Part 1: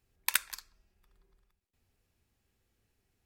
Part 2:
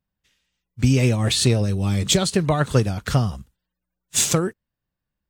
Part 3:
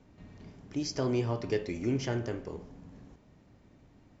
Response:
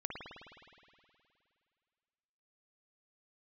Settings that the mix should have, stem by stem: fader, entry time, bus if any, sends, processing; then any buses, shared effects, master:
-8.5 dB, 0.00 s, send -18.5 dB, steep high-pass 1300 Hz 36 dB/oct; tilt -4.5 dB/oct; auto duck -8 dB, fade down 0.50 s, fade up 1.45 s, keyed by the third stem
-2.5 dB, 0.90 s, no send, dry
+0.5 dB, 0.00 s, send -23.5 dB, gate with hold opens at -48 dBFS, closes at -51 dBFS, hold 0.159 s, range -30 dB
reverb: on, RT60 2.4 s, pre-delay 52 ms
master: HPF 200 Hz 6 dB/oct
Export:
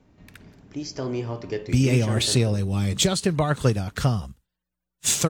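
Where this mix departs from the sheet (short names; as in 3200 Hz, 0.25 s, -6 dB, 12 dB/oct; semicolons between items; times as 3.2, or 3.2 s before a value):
stem 3: missing gate with hold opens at -48 dBFS, closes at -51 dBFS, hold 0.159 s, range -30 dB; master: missing HPF 200 Hz 6 dB/oct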